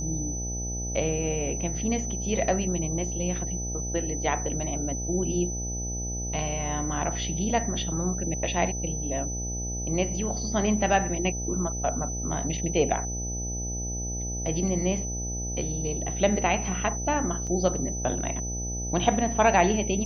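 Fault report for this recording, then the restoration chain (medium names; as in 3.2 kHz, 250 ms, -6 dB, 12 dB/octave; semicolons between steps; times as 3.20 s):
buzz 60 Hz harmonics 14 -33 dBFS
whine 6 kHz -33 dBFS
17.47 s: dropout 4.5 ms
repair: de-hum 60 Hz, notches 14; band-stop 6 kHz, Q 30; interpolate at 17.47 s, 4.5 ms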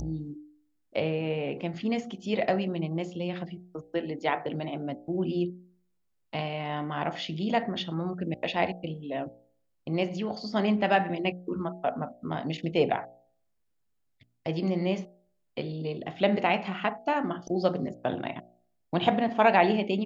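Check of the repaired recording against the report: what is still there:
nothing left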